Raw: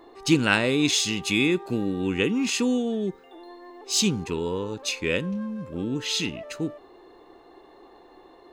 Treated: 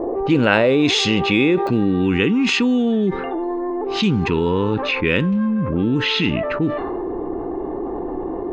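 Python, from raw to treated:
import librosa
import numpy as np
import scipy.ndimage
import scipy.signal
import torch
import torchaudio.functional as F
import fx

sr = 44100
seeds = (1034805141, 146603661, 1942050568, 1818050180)

y = scipy.signal.sosfilt(scipy.signal.butter(2, 2900.0, 'lowpass', fs=sr, output='sos'), x)
y = fx.env_lowpass(y, sr, base_hz=460.0, full_db=-22.5)
y = fx.peak_eq(y, sr, hz=560.0, db=fx.steps((0.0, 9.5), (1.67, -6.0)), octaves=0.8)
y = fx.env_flatten(y, sr, amount_pct=70)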